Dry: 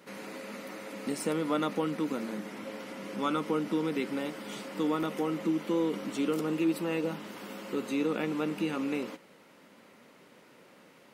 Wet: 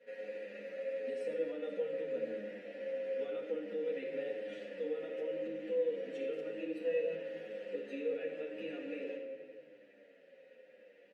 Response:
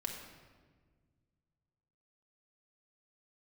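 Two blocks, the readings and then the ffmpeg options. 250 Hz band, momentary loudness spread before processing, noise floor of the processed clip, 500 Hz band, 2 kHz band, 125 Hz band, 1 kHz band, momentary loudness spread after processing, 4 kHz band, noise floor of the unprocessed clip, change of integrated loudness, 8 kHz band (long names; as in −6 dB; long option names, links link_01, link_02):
−15.5 dB, 12 LU, −62 dBFS, −1.5 dB, −8.5 dB, below −20 dB, −22.0 dB, 9 LU, −14.0 dB, −58 dBFS, −7.0 dB, below −25 dB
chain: -filter_complex "[0:a]alimiter=limit=-24dB:level=0:latency=1:release=174,asplit=3[link_01][link_02][link_03];[link_01]bandpass=frequency=530:width_type=q:width=8,volume=0dB[link_04];[link_02]bandpass=frequency=1840:width_type=q:width=8,volume=-6dB[link_05];[link_03]bandpass=frequency=2480:width_type=q:width=8,volume=-9dB[link_06];[link_04][link_05][link_06]amix=inputs=3:normalize=0,aecho=1:1:477:0.106[link_07];[1:a]atrim=start_sample=2205[link_08];[link_07][link_08]afir=irnorm=-1:irlink=0,asplit=2[link_09][link_10];[link_10]adelay=9,afreqshift=-0.96[link_11];[link_09][link_11]amix=inputs=2:normalize=1,volume=7.5dB"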